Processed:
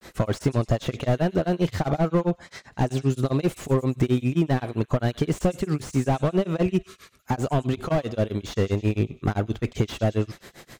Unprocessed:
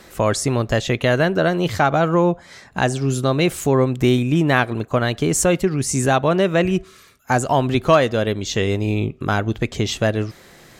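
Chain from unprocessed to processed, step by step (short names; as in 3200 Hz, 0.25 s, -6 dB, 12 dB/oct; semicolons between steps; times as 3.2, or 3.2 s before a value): dynamic EQ 1700 Hz, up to -5 dB, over -33 dBFS, Q 2; grains 0.135 s, grains 7.6/s, spray 11 ms, pitch spread up and down by 0 st; compressor 3:1, threshold -21 dBFS, peak gain reduction 8.5 dB; on a send: thin delay 99 ms, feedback 55%, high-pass 2500 Hz, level -22 dB; on the sum: slew limiter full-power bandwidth 45 Hz; gain +3 dB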